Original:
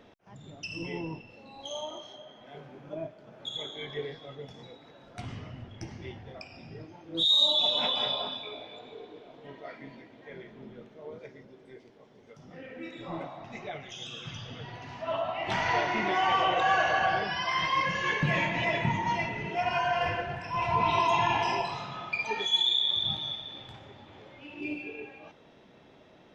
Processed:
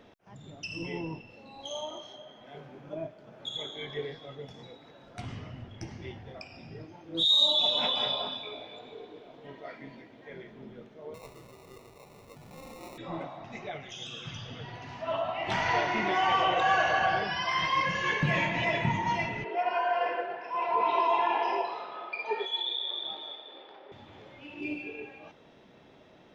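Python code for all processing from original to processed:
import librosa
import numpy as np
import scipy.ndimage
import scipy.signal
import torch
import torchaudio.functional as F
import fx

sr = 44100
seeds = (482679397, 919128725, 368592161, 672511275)

y = fx.chain(x, sr, fx.peak_eq(hz=270.0, db=-14.5, octaves=1.3),
    fx.sample_hold(seeds[0], rate_hz=1600.0, jitter_pct=0),
    fx.env_flatten(amount_pct=50), at=(11.14, 12.98))
y = fx.chain(y, sr, fx.ellip_bandpass(low_hz=400.0, high_hz=4900.0, order=3, stop_db=60),
    fx.tilt_eq(slope=-3.5), at=(19.44, 23.92))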